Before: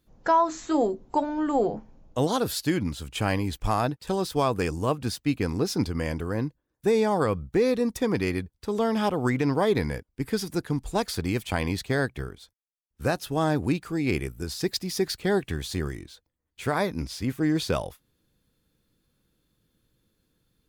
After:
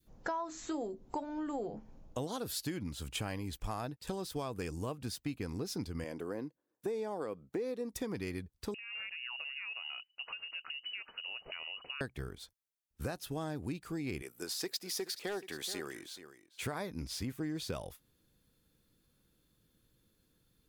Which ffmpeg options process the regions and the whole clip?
-filter_complex "[0:a]asettb=1/sr,asplit=3[s0][s1][s2];[s0]atrim=end=6.044[s3];[s1]atrim=start=6.04:end=7.92,asetpts=PTS-STARTPTS,afade=t=in:d=0.004:c=qsin,afade=t=out:st=1.876:d=0.004:c=qsin,highpass=360,tiltshelf=f=750:g=5.5[s4];[s2]atrim=start=7.916[s5];[s3][s4]acrossfade=d=0.004:c1=hsin:c2=qsin[s6];[s6][s5]acrossfade=d=0.004:c1=qsin:c2=hsin,asettb=1/sr,asplit=3[s7][s8][s9];[s7]atrim=end=8.744[s10];[s8]atrim=start=8.74:end=12.01,asetpts=PTS-STARTPTS,afade=t=in:d=0.004:c=qsin,afade=t=out:st=3.266:d=0.004:c=qsin,acompressor=threshold=0.0158:ratio=16:attack=3.2:release=140:knee=1:detection=peak,lowpass=f=2600:t=q:w=0.5098,lowpass=f=2600:t=q:w=0.6013,lowpass=f=2600:t=q:w=0.9,lowpass=f=2600:t=q:w=2.563,afreqshift=-3000[s11];[s9]atrim=start=12.006[s12];[s10][s11]acrossfade=d=0.004:c1=hsin:c2=qsin[s13];[s13][s12]acrossfade=d=0.004:c1=qsin:c2=hsin,asettb=1/sr,asplit=3[s14][s15][s16];[s14]atrim=end=14.224[s17];[s15]atrim=start=14.22:end=16.62,asetpts=PTS-STARTPTS,afade=t=in:d=0.004:c=qsin,afade=t=out:st=2.396:d=0.004:c=qsin,highpass=390,aeval=exprs='0.112*(abs(mod(val(0)/0.112+3,4)-2)-1)':c=same,aecho=1:1:426:0.15,atrim=end_sample=105840[s18];[s16]atrim=start=16.616[s19];[s17][s18]acrossfade=d=0.004:c1=hsin:c2=qsin[s20];[s20][s19]acrossfade=d=0.004:c1=qsin:c2=hsin,adynamicequalizer=threshold=0.0112:dfrequency=1000:dqfactor=0.97:tfrequency=1000:tqfactor=0.97:attack=5:release=100:ratio=0.375:range=2:mode=cutabove:tftype=bell,acompressor=threshold=0.0178:ratio=4,highshelf=f=6800:g=4,volume=0.794"

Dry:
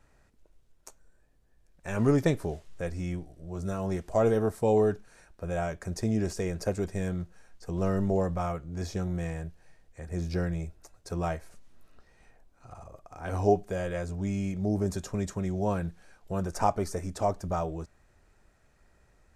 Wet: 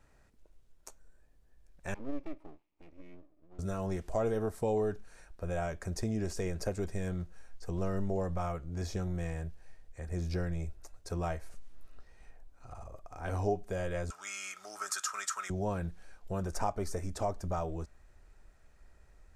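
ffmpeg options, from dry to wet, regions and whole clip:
-filter_complex "[0:a]asettb=1/sr,asplit=3[s0][s1][s2];[s0]atrim=end=1.944[s3];[s1]atrim=start=1.94:end=3.59,asetpts=PTS-STARTPTS,afade=t=in:d=0.004:c=qsin,afade=t=out:st=1.646:d=0.004:c=qsin,asplit=3[s4][s5][s6];[s4]bandpass=f=300:t=q:w=8,volume=1[s7];[s5]bandpass=f=870:t=q:w=8,volume=0.501[s8];[s6]bandpass=f=2240:t=q:w=8,volume=0.355[s9];[s7][s8][s9]amix=inputs=3:normalize=0,aeval=exprs='max(val(0),0)':c=same[s10];[s2]atrim=start=3.586[s11];[s3][s10]acrossfade=d=0.004:c1=hsin:c2=qsin[s12];[s12][s11]acrossfade=d=0.004:c1=qsin:c2=hsin,asettb=1/sr,asplit=3[s13][s14][s15];[s13]atrim=end=14.104[s16];[s14]atrim=start=14.1:end=15.5,asetpts=PTS-STARTPTS,afade=t=in:d=0.004:c=qsin,afade=t=out:st=1.396:d=0.004:c=qsin,highpass=f=1300:t=q:w=10,equalizer=f=7800:w=0.36:g=11.5,bandreject=f=3900:w=20[s17];[s15]atrim=start=15.496[s18];[s16][s17]acrossfade=d=0.004:c1=hsin:c2=qsin[s19];[s19][s18]acrossfade=d=0.004:c1=qsin:c2=hsin,asubboost=boost=2.5:cutoff=70,acompressor=threshold=0.0316:ratio=2,volume=0.841"

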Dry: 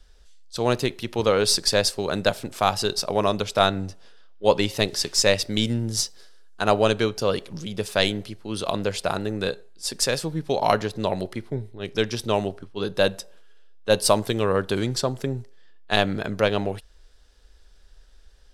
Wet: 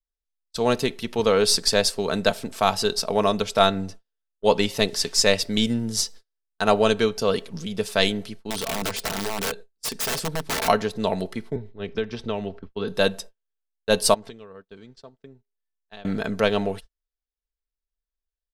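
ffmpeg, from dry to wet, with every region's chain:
-filter_complex "[0:a]asettb=1/sr,asplit=3[s0][s1][s2];[s0]atrim=end=8.224[s3];[s1]atrim=start=8.22:end=10.68,asetpts=PTS-STARTPTS,afade=t=in:d=0.004:c=qsin,afade=t=out:st=2.456:d=0.004:c=qsin,acompressor=mode=upward:threshold=0.0126:ratio=2.5:attack=3.2:release=140:knee=2.83:detection=peak,aeval=exprs='(mod(11.2*val(0)+1,2)-1)/11.2':c=same[s4];[s2]atrim=start=10.676[s5];[s3][s4]acrossfade=d=0.004:c1=hsin:c2=qsin[s6];[s6][s5]acrossfade=d=0.004:c1=qsin:c2=hsin,asettb=1/sr,asplit=3[s7][s8][s9];[s7]atrim=end=11.564[s10];[s8]atrim=start=11.56:end=12.88,asetpts=PTS-STARTPTS,afade=t=in:d=0.004:c=qsin,afade=t=out:st=1.316:d=0.004:c=qsin,lowpass=3300,equalizer=f=61:w=1.6:g=11.5,acrossover=split=530|1500[s11][s12][s13];[s11]acompressor=threshold=0.0398:ratio=4[s14];[s12]acompressor=threshold=0.0178:ratio=4[s15];[s13]acompressor=threshold=0.0126:ratio=4[s16];[s14][s15][s16]amix=inputs=3:normalize=0[s17];[s9]atrim=start=12.876[s18];[s10][s17]acrossfade=d=0.004:c1=hsin:c2=qsin[s19];[s19][s18]acrossfade=d=0.004:c1=qsin:c2=hsin,asettb=1/sr,asplit=3[s20][s21][s22];[s20]atrim=end=14.144[s23];[s21]atrim=start=14.14:end=16.05,asetpts=PTS-STARTPTS,afade=t=in:d=0.004:c=qsin,afade=t=out:st=1.906:d=0.004:c=qsin,lowpass=5100,acompressor=threshold=0.0112:ratio=4:attack=3.2:release=140:knee=1:detection=peak[s24];[s22]atrim=start=16.046[s25];[s23][s24]acrossfade=d=0.004:c1=hsin:c2=qsin[s26];[s26][s25]acrossfade=d=0.004:c1=qsin:c2=hsin,agate=range=0.01:threshold=0.0126:ratio=16:detection=peak,aecho=1:1:4.5:0.43"

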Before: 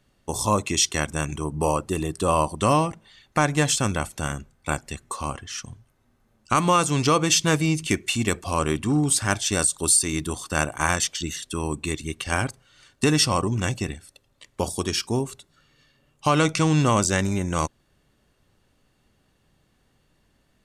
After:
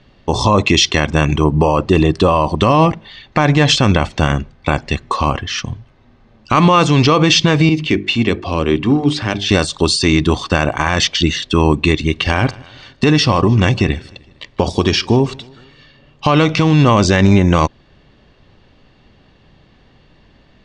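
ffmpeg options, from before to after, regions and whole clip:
-filter_complex "[0:a]asettb=1/sr,asplit=3[s0][s1][s2];[s0]atrim=end=7.694[s3];[s1]atrim=start=7.69:end=9.49,asetpts=PTS-STARTPTS,afade=t=in:d=0.004:c=qsin,afade=t=out:st=1.796:d=0.004:c=qsin,bass=f=250:g=-8,treble=f=4000:g=-12,bandreject=f=50:t=h:w=6,bandreject=f=100:t=h:w=6,bandreject=f=150:t=h:w=6,bandreject=f=200:t=h:w=6,bandreject=f=250:t=h:w=6,bandreject=f=300:t=h:w=6,bandreject=f=350:t=h:w=6,bandreject=f=400:t=h:w=6,acrossover=split=400|3000[s4][s5][s6];[s5]acompressor=threshold=0.00447:ratio=2:attack=3.2:release=140:knee=2.83:detection=peak[s7];[s4][s7][s6]amix=inputs=3:normalize=0[s8];[s2]atrim=start=9.486[s9];[s3][s8]acrossfade=d=0.004:c1=hsin:c2=qsin[s10];[s10][s9]acrossfade=d=0.004:c1=qsin:c2=hsin,asettb=1/sr,asplit=3[s11][s12][s13];[s11]atrim=end=12.004[s14];[s12]atrim=start=12:end=16.72,asetpts=PTS-STARTPTS,afade=t=in:d=0.004:c=qsin,afade=t=out:st=4.716:d=0.004:c=qsin,acompressor=threshold=0.0631:ratio=3:attack=3.2:release=140:knee=1:detection=peak,aecho=1:1:153|306|459:0.0631|0.0341|0.0184,atrim=end_sample=208152[s15];[s13]atrim=start=16.716[s16];[s14][s15]acrossfade=d=0.004:c1=hsin:c2=qsin[s17];[s17][s16]acrossfade=d=0.004:c1=qsin:c2=hsin,lowpass=f=4600:w=0.5412,lowpass=f=4600:w=1.3066,equalizer=f=1400:t=o:w=0.24:g=-5.5,alimiter=level_in=7.08:limit=0.891:release=50:level=0:latency=1,volume=0.891"

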